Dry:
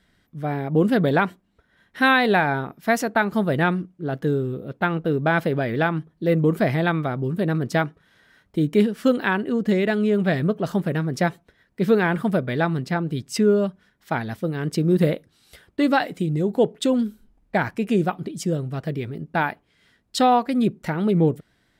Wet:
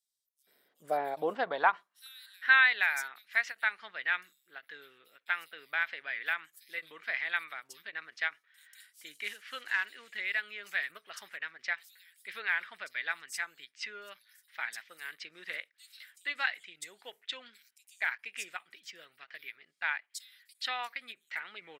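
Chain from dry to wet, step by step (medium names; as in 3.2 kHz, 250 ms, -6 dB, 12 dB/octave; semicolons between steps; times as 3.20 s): 9.11–9.70 s: CVSD coder 64 kbps; bands offset in time highs, lows 470 ms, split 5.3 kHz; high-pass sweep 360 Hz -> 2 kHz, 0.25–2.75 s; endings held to a fixed fall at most 520 dB/s; trim -7.5 dB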